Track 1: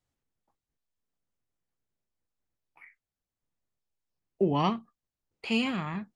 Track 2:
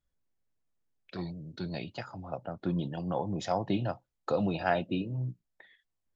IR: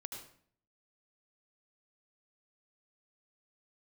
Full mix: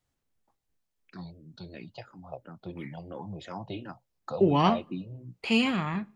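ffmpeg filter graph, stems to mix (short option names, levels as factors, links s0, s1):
-filter_complex "[0:a]volume=1.41,asplit=2[s0][s1];[s1]volume=0.0794[s2];[1:a]asplit=2[s3][s4];[s4]afreqshift=-2.9[s5];[s3][s5]amix=inputs=2:normalize=1,volume=0.75[s6];[2:a]atrim=start_sample=2205[s7];[s2][s7]afir=irnorm=-1:irlink=0[s8];[s0][s6][s8]amix=inputs=3:normalize=0"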